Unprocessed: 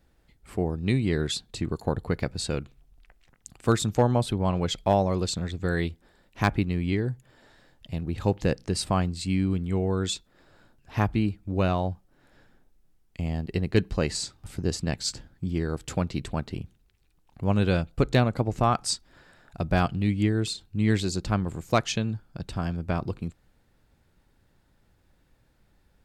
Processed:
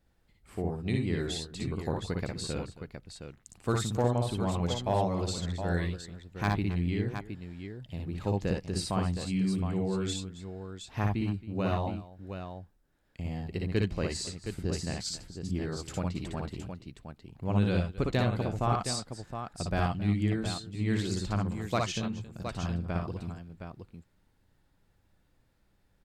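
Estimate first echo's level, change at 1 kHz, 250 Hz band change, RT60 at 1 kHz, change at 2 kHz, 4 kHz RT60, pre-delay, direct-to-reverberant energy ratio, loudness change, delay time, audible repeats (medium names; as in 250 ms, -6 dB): -3.5 dB, -5.0 dB, -4.5 dB, no reverb, -5.0 dB, no reverb, no reverb, no reverb, -5.0 dB, 58 ms, 3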